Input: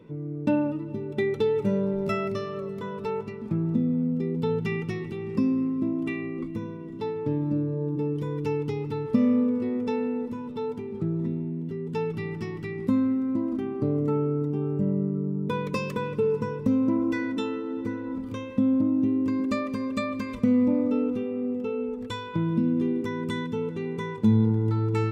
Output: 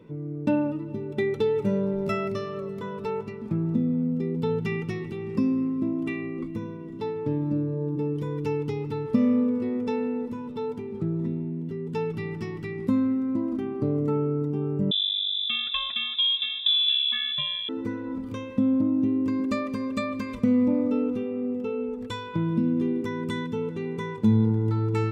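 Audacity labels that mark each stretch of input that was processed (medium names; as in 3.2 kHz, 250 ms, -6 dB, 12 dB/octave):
14.910000	17.690000	frequency inversion carrier 3.7 kHz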